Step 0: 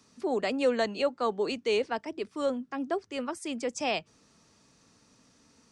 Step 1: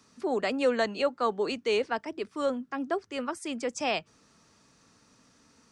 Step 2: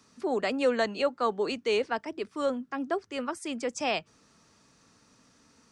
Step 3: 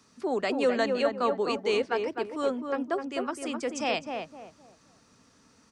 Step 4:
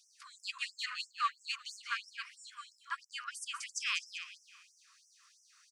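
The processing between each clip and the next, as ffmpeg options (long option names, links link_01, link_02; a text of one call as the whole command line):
ffmpeg -i in.wav -af "equalizer=frequency=1400:width_type=o:width=0.98:gain=4" out.wav
ffmpeg -i in.wav -af anull out.wav
ffmpeg -i in.wav -filter_complex "[0:a]asplit=2[link_01][link_02];[link_02]adelay=257,lowpass=frequency=1400:poles=1,volume=-4dB,asplit=2[link_03][link_04];[link_04]adelay=257,lowpass=frequency=1400:poles=1,volume=0.31,asplit=2[link_05][link_06];[link_06]adelay=257,lowpass=frequency=1400:poles=1,volume=0.31,asplit=2[link_07][link_08];[link_08]adelay=257,lowpass=frequency=1400:poles=1,volume=0.31[link_09];[link_01][link_03][link_05][link_07][link_09]amix=inputs=5:normalize=0" out.wav
ffmpeg -i in.wav -af "asoftclip=type=tanh:threshold=-17.5dB,aecho=1:1:196|392|588|784:0.355|0.114|0.0363|0.0116,afftfilt=real='re*gte(b*sr/1024,950*pow(5200/950,0.5+0.5*sin(2*PI*3*pts/sr)))':imag='im*gte(b*sr/1024,950*pow(5200/950,0.5+0.5*sin(2*PI*3*pts/sr)))':win_size=1024:overlap=0.75" out.wav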